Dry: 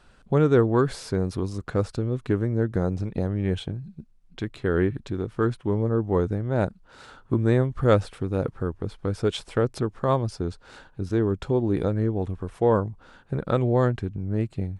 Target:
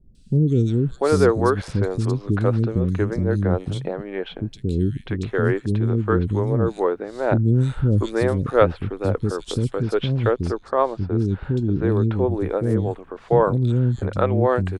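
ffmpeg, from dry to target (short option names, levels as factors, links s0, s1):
-filter_complex "[0:a]asettb=1/sr,asplit=3[s0][s1][s2];[s0]atrim=end=9.714[s3];[s1]atrim=start=9.71:end=12.1,asetpts=PTS-STARTPTS,afade=t=in:d=0.004:c=qsin,afade=t=out:st=2.386:d=0.004:c=qsin,highshelf=f=4600:g=-11[s4];[s2]atrim=start=12.096[s5];[s3][s4]acrossfade=d=0.004:c1=hsin:c2=qsin[s6];[s6][s5]acrossfade=d=0.004:c1=qsin:c2=hsin,acrossover=split=320|3500[s7][s8][s9];[s9]adelay=150[s10];[s8]adelay=690[s11];[s7][s11][s10]amix=inputs=3:normalize=0,volume=1.88"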